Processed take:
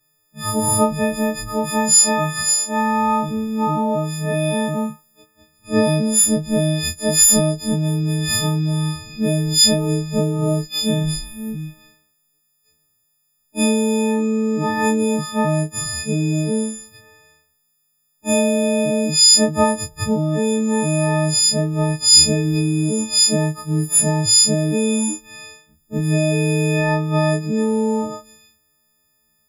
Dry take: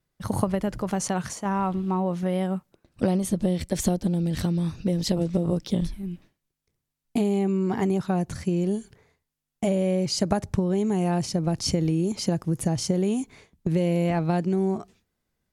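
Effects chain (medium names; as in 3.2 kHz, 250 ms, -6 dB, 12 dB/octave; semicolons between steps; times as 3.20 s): partials quantised in pitch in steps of 6 st; time stretch by phase-locked vocoder 1.9×; trim +5 dB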